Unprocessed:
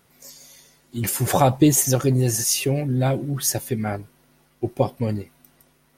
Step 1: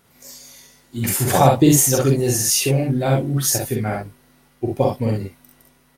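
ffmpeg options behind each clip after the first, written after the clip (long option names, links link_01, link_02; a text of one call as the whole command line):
ffmpeg -i in.wav -af "aecho=1:1:44|65:0.708|0.631,volume=1dB" out.wav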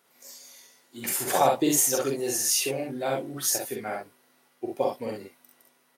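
ffmpeg -i in.wav -af "highpass=360,volume=-6dB" out.wav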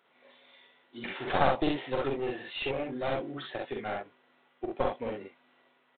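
ffmpeg -i in.wav -af "lowshelf=frequency=180:gain=-7.5,aresample=8000,aeval=exprs='clip(val(0),-1,0.0224)':channel_layout=same,aresample=44100" out.wav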